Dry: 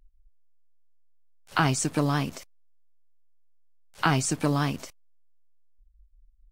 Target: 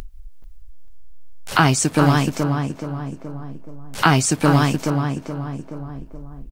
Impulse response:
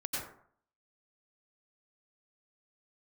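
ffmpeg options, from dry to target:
-filter_complex "[0:a]asplit=2[s0][s1];[s1]adelay=425,lowpass=f=1300:p=1,volume=0.596,asplit=2[s2][s3];[s3]adelay=425,lowpass=f=1300:p=1,volume=0.33,asplit=2[s4][s5];[s5]adelay=425,lowpass=f=1300:p=1,volume=0.33,asplit=2[s6][s7];[s7]adelay=425,lowpass=f=1300:p=1,volume=0.33[s8];[s2][s4][s6][s8]amix=inputs=4:normalize=0[s9];[s0][s9]amix=inputs=2:normalize=0,acompressor=mode=upward:threshold=0.0355:ratio=2.5,asplit=2[s10][s11];[s11]aecho=0:1:440|880|1320:0.0891|0.0383|0.0165[s12];[s10][s12]amix=inputs=2:normalize=0,volume=2.51"

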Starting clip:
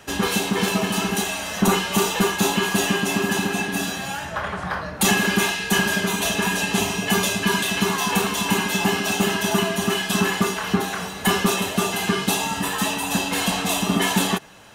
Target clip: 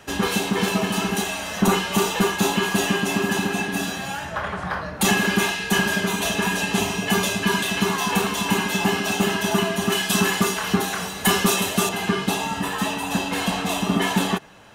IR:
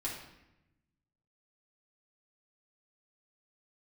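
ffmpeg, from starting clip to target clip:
-af "asetnsamples=n=441:p=0,asendcmd='9.92 highshelf g 4.5;11.89 highshelf g -7.5',highshelf=f=4000:g=-3"

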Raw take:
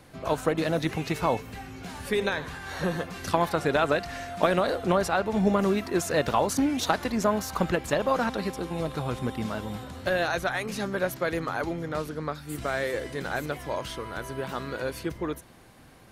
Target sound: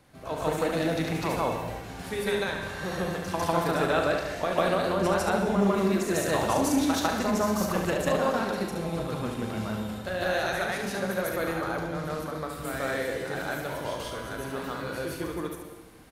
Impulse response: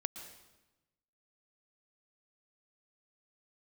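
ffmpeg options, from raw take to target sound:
-filter_complex "[0:a]aecho=1:1:37|71:0.376|0.501,asplit=2[s0][s1];[1:a]atrim=start_sample=2205,highshelf=f=8800:g=5.5,adelay=150[s2];[s1][s2]afir=irnorm=-1:irlink=0,volume=1.68[s3];[s0][s3]amix=inputs=2:normalize=0,volume=0.422"

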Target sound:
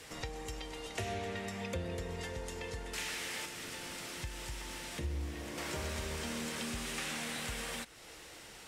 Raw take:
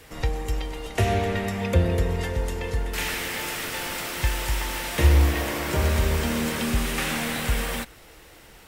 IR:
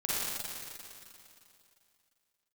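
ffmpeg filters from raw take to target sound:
-filter_complex "[0:a]lowpass=7700,lowshelf=f=71:g=-11.5,asettb=1/sr,asplit=3[s0][s1][s2];[s0]atrim=end=3.454[s3];[s1]atrim=start=3.45:end=5.58,asetpts=PTS-STARTPTS,afade=t=in:d=0.004:c=qsin,afade=t=out:st=2.126:d=0.004:c=qsin,acrossover=split=370[s4][s5];[s5]acompressor=threshold=0.0141:ratio=6[s6];[s4][s6]amix=inputs=2:normalize=0[s7];[s2]atrim=start=5.576[s8];[s3][s7]acrossfade=d=0.004:c1=hsin:c2=qsin[s9];[s9][s8]acrossfade=d=0.004:c1=qsin:c2=hsin,highshelf=f=4600:g=11,acompressor=threshold=0.00891:ratio=2,volume=0.668"

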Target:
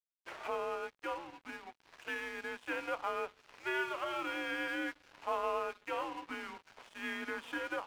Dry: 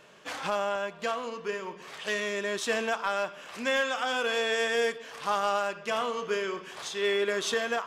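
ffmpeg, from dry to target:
-af "highpass=f=540:t=q:w=0.5412,highpass=f=540:t=q:w=1.307,lowpass=f=3000:t=q:w=0.5176,lowpass=f=3000:t=q:w=0.7071,lowpass=f=3000:t=q:w=1.932,afreqshift=-160,aeval=exprs='sgn(val(0))*max(abs(val(0))-0.00596,0)':c=same,volume=0.531"

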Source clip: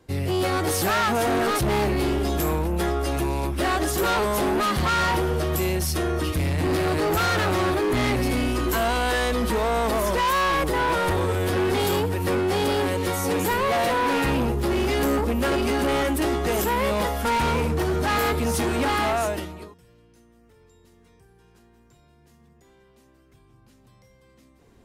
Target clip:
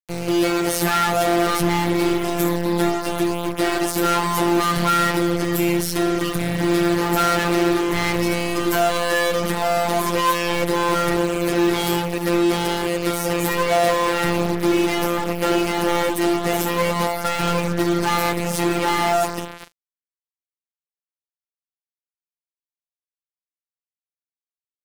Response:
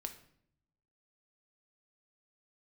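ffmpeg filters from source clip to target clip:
-filter_complex "[0:a]asplit=2[s0][s1];[1:a]atrim=start_sample=2205,highshelf=f=3400:g=-8[s2];[s1][s2]afir=irnorm=-1:irlink=0,volume=0.531[s3];[s0][s3]amix=inputs=2:normalize=0,afftfilt=real='hypot(re,im)*cos(PI*b)':imag='0':win_size=1024:overlap=0.75,acrusher=bits=4:mix=0:aa=0.5,volume=1.58"

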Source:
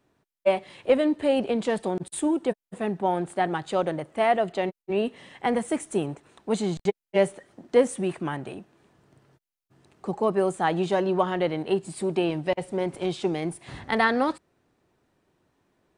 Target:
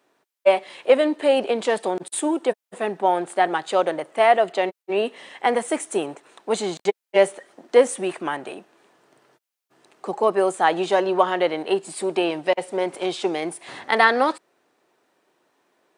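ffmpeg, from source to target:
-af "highpass=410,volume=2.11"

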